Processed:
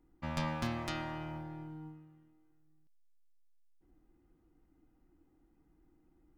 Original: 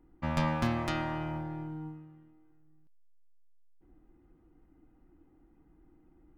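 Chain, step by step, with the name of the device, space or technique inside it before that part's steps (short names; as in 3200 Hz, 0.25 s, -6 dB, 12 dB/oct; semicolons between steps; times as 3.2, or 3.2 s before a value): presence and air boost (bell 4700 Hz +4.5 dB 1.8 oct; high shelf 9100 Hz +6 dB); gain -6.5 dB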